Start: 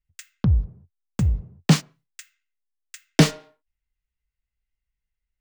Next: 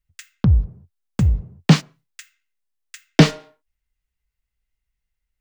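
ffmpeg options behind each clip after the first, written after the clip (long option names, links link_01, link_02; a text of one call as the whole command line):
ffmpeg -i in.wav -filter_complex "[0:a]acrossover=split=5600[link_01][link_02];[link_02]acompressor=threshold=-42dB:ratio=4:attack=1:release=60[link_03];[link_01][link_03]amix=inputs=2:normalize=0,volume=4dB" out.wav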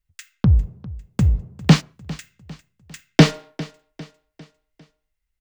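ffmpeg -i in.wav -af "aecho=1:1:401|802|1203|1604:0.112|0.0516|0.0237|0.0109" out.wav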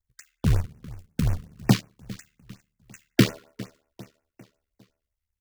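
ffmpeg -i in.wav -af "acrusher=bits=3:mode=log:mix=0:aa=0.000001,aeval=exprs='val(0)*sin(2*PI*37*n/s)':channel_layout=same,afftfilt=real='re*(1-between(b*sr/1024,660*pow(4100/660,0.5+0.5*sin(2*PI*5.5*pts/sr))/1.41,660*pow(4100/660,0.5+0.5*sin(2*PI*5.5*pts/sr))*1.41))':imag='im*(1-between(b*sr/1024,660*pow(4100/660,0.5+0.5*sin(2*PI*5.5*pts/sr))/1.41,660*pow(4100/660,0.5+0.5*sin(2*PI*5.5*pts/sr))*1.41))':win_size=1024:overlap=0.75,volume=-4dB" out.wav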